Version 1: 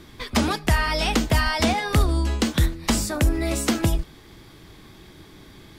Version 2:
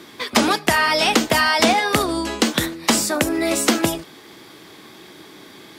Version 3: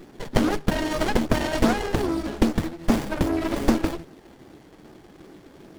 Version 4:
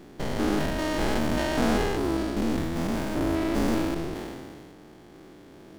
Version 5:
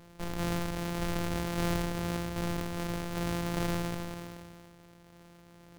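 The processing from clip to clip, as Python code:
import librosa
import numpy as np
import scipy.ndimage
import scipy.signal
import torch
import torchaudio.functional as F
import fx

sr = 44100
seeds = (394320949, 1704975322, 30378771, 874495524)

y1 = scipy.signal.sosfilt(scipy.signal.butter(2, 270.0, 'highpass', fs=sr, output='sos'), x)
y1 = y1 * 10.0 ** (7.0 / 20.0)
y2 = fx.phaser_stages(y1, sr, stages=12, low_hz=110.0, high_hz=3500.0, hz=2.5, feedback_pct=5)
y2 = fx.running_max(y2, sr, window=33)
y3 = fx.spec_steps(y2, sr, hold_ms=200)
y3 = fx.sustainer(y3, sr, db_per_s=26.0)
y4 = np.r_[np.sort(y3[:len(y3) // 256 * 256].reshape(-1, 256), axis=1).ravel(), y3[len(y3) // 256 * 256:]]
y4 = y4 * 10.0 ** (-7.0 / 20.0)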